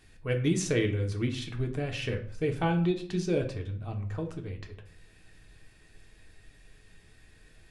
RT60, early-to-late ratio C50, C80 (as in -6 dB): 0.50 s, 11.5 dB, 16.0 dB